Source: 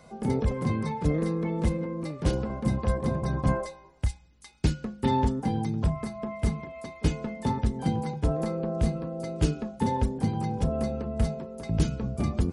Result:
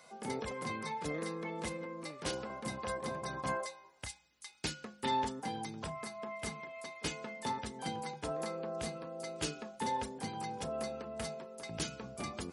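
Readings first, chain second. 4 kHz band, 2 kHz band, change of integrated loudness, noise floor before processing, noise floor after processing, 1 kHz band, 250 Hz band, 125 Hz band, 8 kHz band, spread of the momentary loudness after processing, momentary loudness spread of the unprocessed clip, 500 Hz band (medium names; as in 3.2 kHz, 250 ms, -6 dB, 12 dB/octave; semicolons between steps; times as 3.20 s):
+0.5 dB, -1.0 dB, -11.0 dB, -53 dBFS, -61 dBFS, -4.5 dB, -14.5 dB, -20.0 dB, +1.0 dB, 6 LU, 6 LU, -8.0 dB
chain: high-pass 1.4 kHz 6 dB/octave; trim +1 dB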